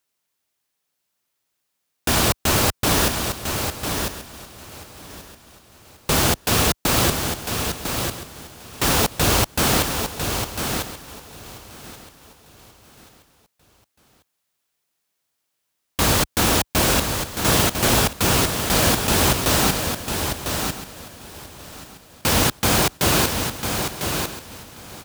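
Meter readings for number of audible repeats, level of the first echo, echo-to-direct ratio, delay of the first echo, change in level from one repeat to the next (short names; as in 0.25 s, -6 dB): 6, -6.5 dB, -6.0 dB, 1 s, no steady repeat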